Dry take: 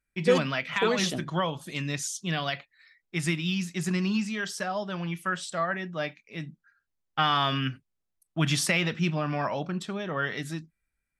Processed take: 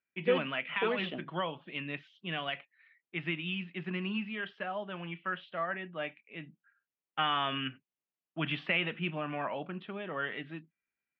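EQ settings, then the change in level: HPF 220 Hz 12 dB/oct; ladder low-pass 3300 Hz, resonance 60%; air absorption 460 m; +6.0 dB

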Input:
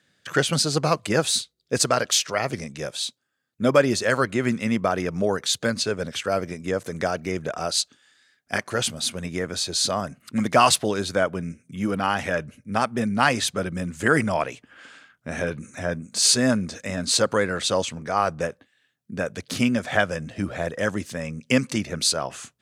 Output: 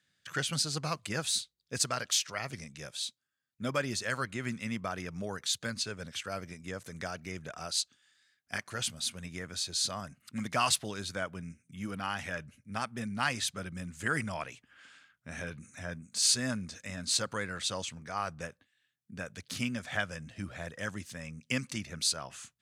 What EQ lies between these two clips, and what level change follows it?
bell 450 Hz -10 dB 2.3 oct; -7.5 dB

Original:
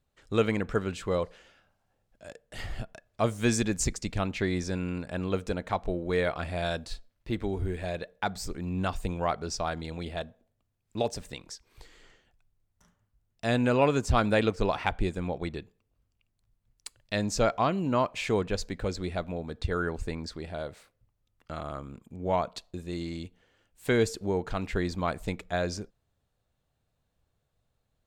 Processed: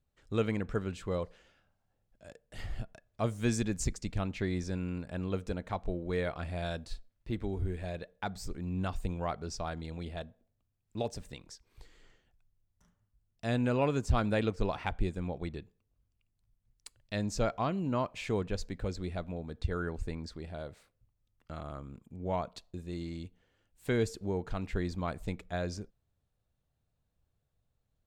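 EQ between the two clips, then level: low shelf 250 Hz +6.5 dB; -7.5 dB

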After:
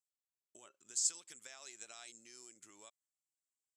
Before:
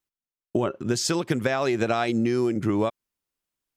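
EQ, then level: band-pass 7600 Hz, Q 5.5; +1.0 dB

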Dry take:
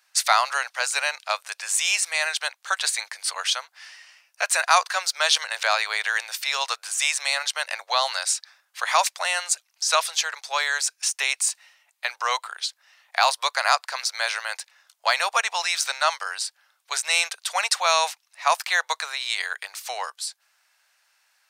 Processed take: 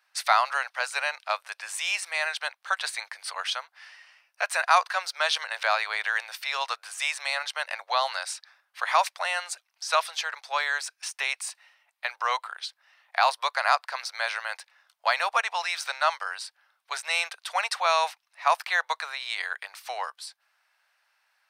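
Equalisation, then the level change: bell 410 Hz -4 dB 0.96 oct; high shelf 3200 Hz -10.5 dB; bell 7000 Hz -6.5 dB 0.39 oct; 0.0 dB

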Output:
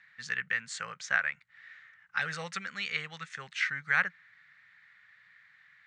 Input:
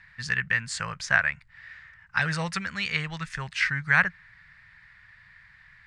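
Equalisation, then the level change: speaker cabinet 320–7300 Hz, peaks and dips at 330 Hz -9 dB, 660 Hz -7 dB, 980 Hz -9 dB, 1700 Hz -4 dB, 2600 Hz -4 dB, 4900 Hz -9 dB; notch 940 Hz, Q 26; -2.0 dB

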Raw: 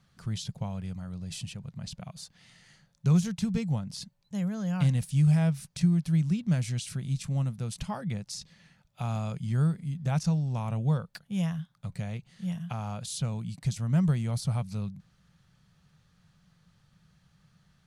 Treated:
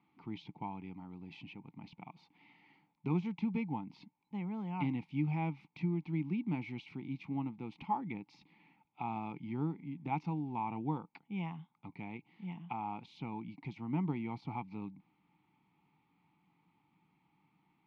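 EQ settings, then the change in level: vowel filter u; air absorption 290 m; tone controls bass -10 dB, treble -1 dB; +15.0 dB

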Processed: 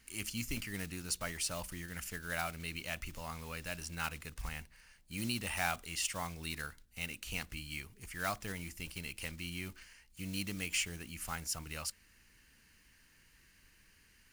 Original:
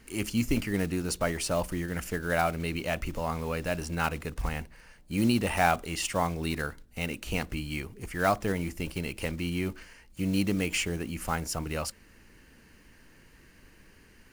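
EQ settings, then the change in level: passive tone stack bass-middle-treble 5-5-5; +3.5 dB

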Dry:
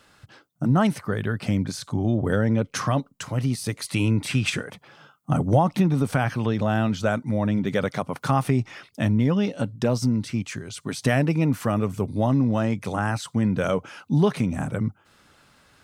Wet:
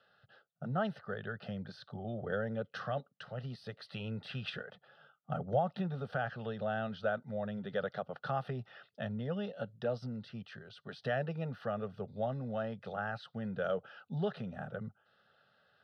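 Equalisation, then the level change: HPF 190 Hz 12 dB/oct; air absorption 210 m; fixed phaser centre 1500 Hz, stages 8; -7.5 dB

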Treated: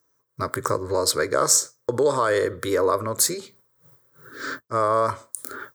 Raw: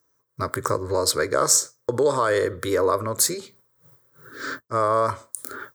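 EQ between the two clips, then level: bell 83 Hz -3 dB 0.65 oct; 0.0 dB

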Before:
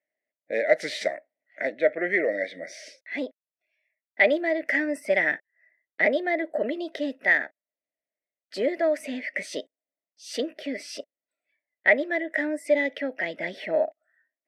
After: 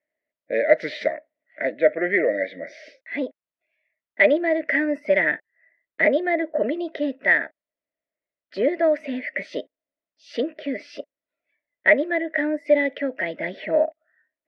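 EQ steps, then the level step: Butterworth band-stop 780 Hz, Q 7.8; air absorption 290 m; +5.0 dB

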